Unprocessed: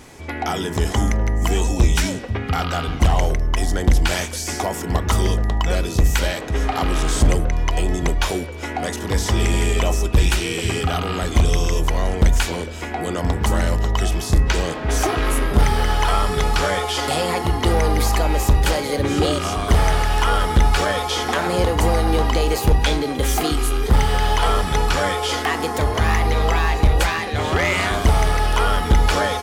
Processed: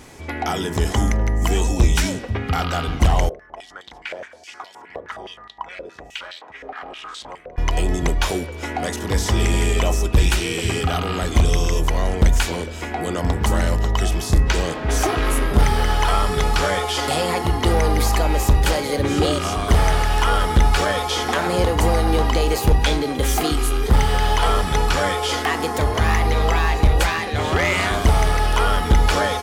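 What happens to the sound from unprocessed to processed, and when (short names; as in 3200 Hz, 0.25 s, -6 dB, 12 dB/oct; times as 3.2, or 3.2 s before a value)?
3.29–7.58 stepped band-pass 9.6 Hz 530–3800 Hz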